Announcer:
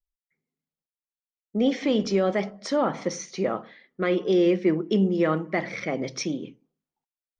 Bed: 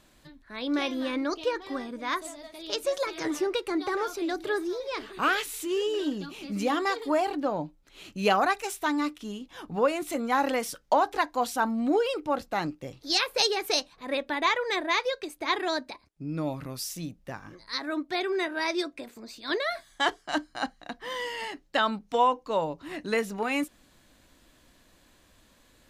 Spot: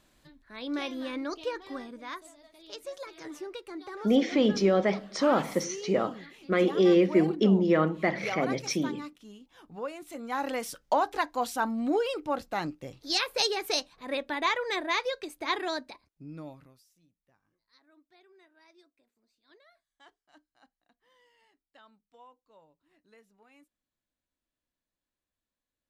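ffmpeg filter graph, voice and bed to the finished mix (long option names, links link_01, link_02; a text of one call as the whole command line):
ffmpeg -i stem1.wav -i stem2.wav -filter_complex "[0:a]adelay=2500,volume=-0.5dB[link_01];[1:a]volume=4.5dB,afade=type=out:start_time=1.83:duration=0.38:silence=0.446684,afade=type=in:start_time=10.08:duration=0.7:silence=0.334965,afade=type=out:start_time=15.56:duration=1.27:silence=0.0334965[link_02];[link_01][link_02]amix=inputs=2:normalize=0" out.wav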